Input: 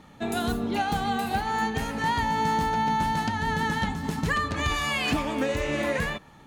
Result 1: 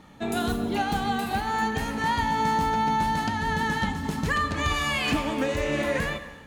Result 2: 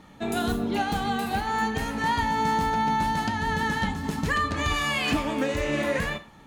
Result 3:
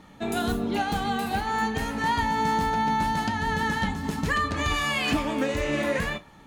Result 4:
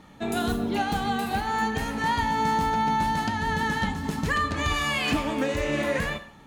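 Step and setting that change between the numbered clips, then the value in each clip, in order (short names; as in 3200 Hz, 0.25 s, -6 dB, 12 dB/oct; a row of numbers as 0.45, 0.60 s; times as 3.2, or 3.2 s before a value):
non-linear reverb, gate: 470, 140, 80, 220 ms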